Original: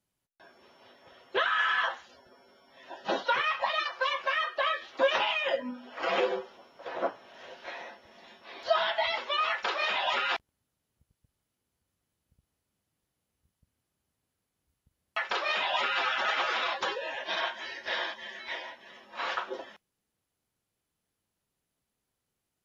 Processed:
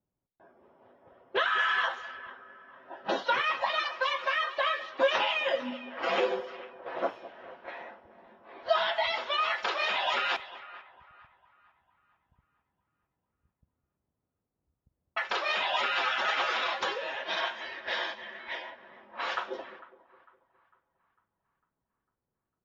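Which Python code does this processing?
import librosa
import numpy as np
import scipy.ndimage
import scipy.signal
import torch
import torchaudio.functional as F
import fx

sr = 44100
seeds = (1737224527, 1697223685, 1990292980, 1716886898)

y = fx.echo_split(x, sr, split_hz=1000.0, low_ms=206, high_ms=451, feedback_pct=52, wet_db=-15.5)
y = fx.env_lowpass(y, sr, base_hz=860.0, full_db=-28.0)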